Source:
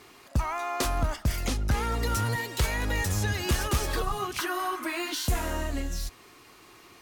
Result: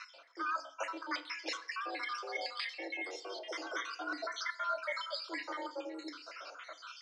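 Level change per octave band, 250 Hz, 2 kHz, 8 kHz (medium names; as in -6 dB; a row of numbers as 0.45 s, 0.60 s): -13.0 dB, -5.5 dB, -18.5 dB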